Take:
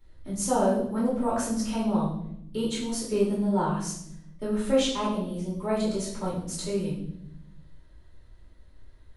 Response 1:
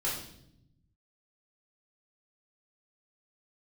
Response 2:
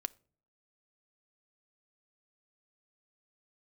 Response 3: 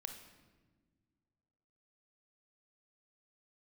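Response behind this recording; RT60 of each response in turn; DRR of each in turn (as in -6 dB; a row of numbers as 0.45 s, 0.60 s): 1; 0.75 s, 0.50 s, no single decay rate; -7.5 dB, 14.0 dB, 5.0 dB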